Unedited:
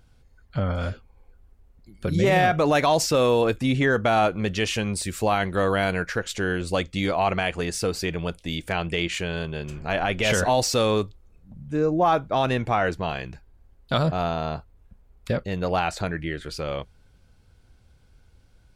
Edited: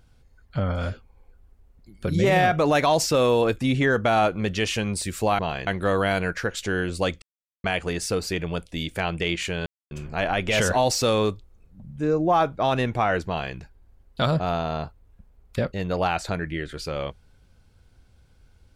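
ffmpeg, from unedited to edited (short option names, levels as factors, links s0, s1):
-filter_complex "[0:a]asplit=7[s0][s1][s2][s3][s4][s5][s6];[s0]atrim=end=5.392[s7];[s1]atrim=start=12.988:end=13.272[s8];[s2]atrim=start=5.388:end=6.94,asetpts=PTS-STARTPTS,afade=t=out:st=1.548:d=0.004:c=hsin[s9];[s3]atrim=start=6.94:end=7.36,asetpts=PTS-STARTPTS,volume=0[s10];[s4]atrim=start=7.36:end=9.38,asetpts=PTS-STARTPTS,afade=t=in:d=0.004:c=hsin,afade=t=out:st=2.016:d=0.004:c=hsin[s11];[s5]atrim=start=9.38:end=9.63,asetpts=PTS-STARTPTS,volume=0[s12];[s6]atrim=start=9.63,asetpts=PTS-STARTPTS,afade=t=in:d=0.004:c=hsin[s13];[s7][s8]acrossfade=d=0.004:c1=hsin:c2=hsin[s14];[s9][s10][s11][s12][s13]concat=n=5:v=0:a=1[s15];[s14][s15]acrossfade=d=0.004:c1=hsin:c2=hsin"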